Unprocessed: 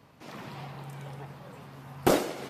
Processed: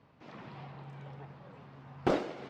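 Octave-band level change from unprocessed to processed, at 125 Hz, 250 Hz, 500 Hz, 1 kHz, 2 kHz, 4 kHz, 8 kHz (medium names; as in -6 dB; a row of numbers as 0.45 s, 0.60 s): -5.0 dB, -5.5 dB, -5.5 dB, -6.0 dB, -6.5 dB, -10.0 dB, under -20 dB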